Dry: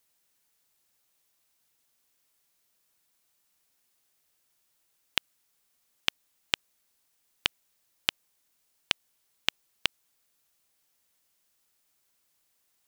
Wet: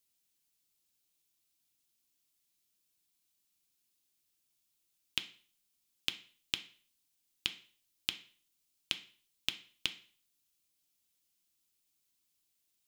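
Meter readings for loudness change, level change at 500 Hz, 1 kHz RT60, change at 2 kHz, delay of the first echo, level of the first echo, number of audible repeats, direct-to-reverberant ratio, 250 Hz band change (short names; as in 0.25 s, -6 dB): -6.5 dB, -12.5 dB, 0.45 s, -8.5 dB, none, none, none, 6.0 dB, -5.5 dB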